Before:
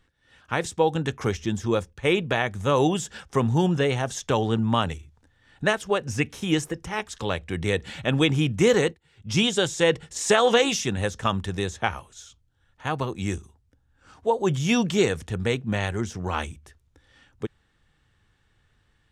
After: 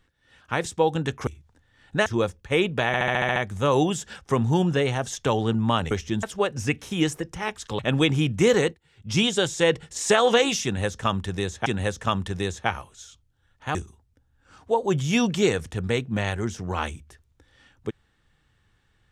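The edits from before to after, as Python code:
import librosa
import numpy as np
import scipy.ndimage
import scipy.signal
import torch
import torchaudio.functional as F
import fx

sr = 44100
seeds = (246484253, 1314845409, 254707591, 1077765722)

y = fx.edit(x, sr, fx.swap(start_s=1.27, length_s=0.32, other_s=4.95, other_length_s=0.79),
    fx.stutter(start_s=2.4, slice_s=0.07, count=8),
    fx.cut(start_s=7.3, length_s=0.69),
    fx.repeat(start_s=10.84, length_s=1.02, count=2),
    fx.cut(start_s=12.93, length_s=0.38), tone=tone)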